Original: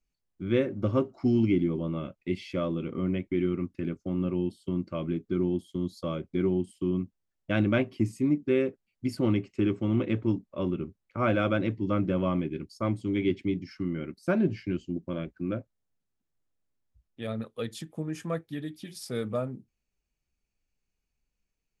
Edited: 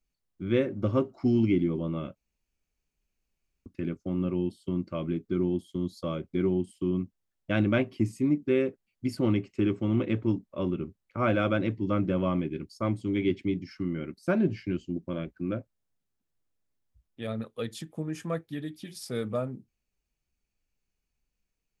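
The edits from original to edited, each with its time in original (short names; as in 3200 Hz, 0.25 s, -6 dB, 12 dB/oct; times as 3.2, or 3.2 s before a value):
2.16–3.66 room tone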